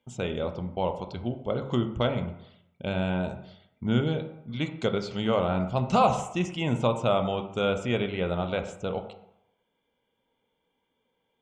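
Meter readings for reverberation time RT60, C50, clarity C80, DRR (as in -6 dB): 0.80 s, 10.0 dB, 12.5 dB, 7.0 dB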